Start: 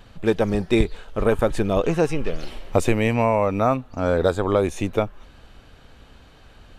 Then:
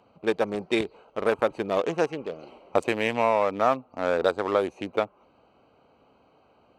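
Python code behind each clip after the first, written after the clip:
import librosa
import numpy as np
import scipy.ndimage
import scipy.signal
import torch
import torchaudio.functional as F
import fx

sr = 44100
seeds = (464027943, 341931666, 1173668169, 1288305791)

y = fx.wiener(x, sr, points=25)
y = fx.weighting(y, sr, curve='A')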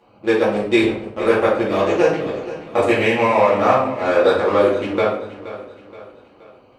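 y = fx.echo_feedback(x, sr, ms=474, feedback_pct=45, wet_db=-15)
y = fx.room_shoebox(y, sr, seeds[0], volume_m3=100.0, walls='mixed', distance_m=2.3)
y = y * librosa.db_to_amplitude(-1.0)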